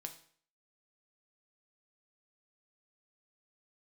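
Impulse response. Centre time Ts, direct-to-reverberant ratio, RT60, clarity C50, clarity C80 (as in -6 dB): 11 ms, 5.0 dB, 0.50 s, 11.5 dB, 15.5 dB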